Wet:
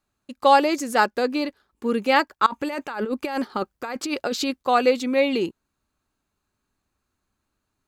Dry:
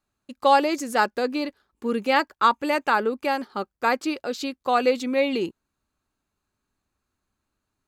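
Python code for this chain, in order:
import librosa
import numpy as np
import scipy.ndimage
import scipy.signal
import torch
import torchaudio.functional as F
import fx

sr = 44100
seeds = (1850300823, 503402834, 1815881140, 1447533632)

y = fx.over_compress(x, sr, threshold_db=-29.0, ratio=-1.0, at=(2.46, 4.62))
y = y * 10.0 ** (2.0 / 20.0)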